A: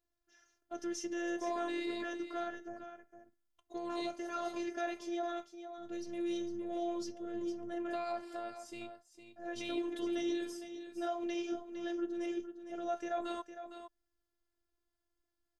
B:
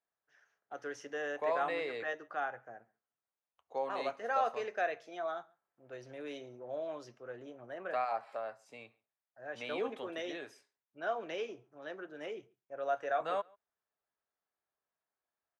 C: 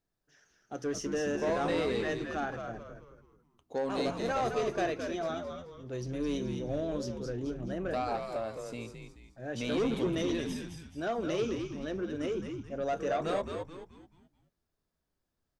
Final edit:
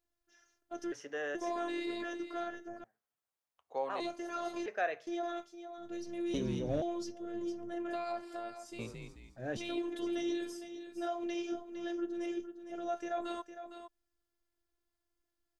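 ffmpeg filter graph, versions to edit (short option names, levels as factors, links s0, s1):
-filter_complex "[1:a]asplit=3[s0][s1][s2];[2:a]asplit=2[s3][s4];[0:a]asplit=6[s5][s6][s7][s8][s9][s10];[s5]atrim=end=0.922[s11];[s0]atrim=start=0.918:end=1.352[s12];[s6]atrim=start=1.348:end=2.842[s13];[s1]atrim=start=2.838:end=4.002[s14];[s7]atrim=start=3.998:end=4.662[s15];[s2]atrim=start=4.658:end=5.072[s16];[s8]atrim=start=5.068:end=6.342[s17];[s3]atrim=start=6.338:end=6.822[s18];[s9]atrim=start=6.818:end=8.792[s19];[s4]atrim=start=8.788:end=9.572[s20];[s10]atrim=start=9.568[s21];[s11][s12]acrossfade=d=0.004:c1=hsin:c2=hsin[s22];[s22][s13]acrossfade=d=0.004:c1=hsin:c2=hsin[s23];[s23][s14]acrossfade=d=0.004:c1=hsin:c2=hsin[s24];[s24][s15]acrossfade=d=0.004:c1=hsin:c2=hsin[s25];[s25][s16]acrossfade=d=0.004:c1=hsin:c2=hsin[s26];[s26][s17]acrossfade=d=0.004:c1=hsin:c2=hsin[s27];[s27][s18]acrossfade=d=0.004:c1=hsin:c2=hsin[s28];[s28][s19]acrossfade=d=0.004:c1=hsin:c2=hsin[s29];[s29][s20]acrossfade=d=0.004:c1=hsin:c2=hsin[s30];[s30][s21]acrossfade=d=0.004:c1=hsin:c2=hsin"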